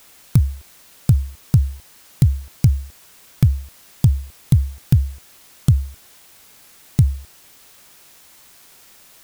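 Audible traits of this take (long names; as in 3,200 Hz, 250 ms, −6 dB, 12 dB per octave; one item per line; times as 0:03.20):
a quantiser's noise floor 8 bits, dither triangular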